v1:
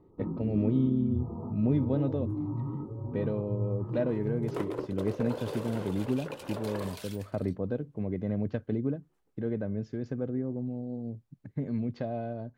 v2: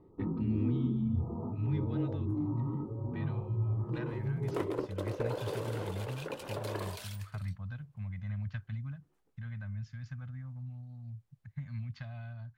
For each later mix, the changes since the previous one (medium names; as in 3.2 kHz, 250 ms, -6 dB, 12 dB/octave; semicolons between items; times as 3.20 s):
speech: add Chebyshev band-stop 110–1400 Hz, order 2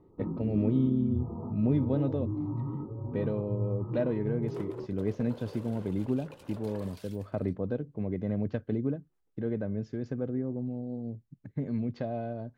speech: remove Chebyshev band-stop 110–1400 Hz, order 2; second sound -9.5 dB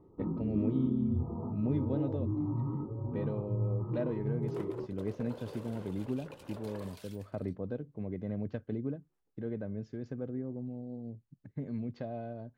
speech -5.5 dB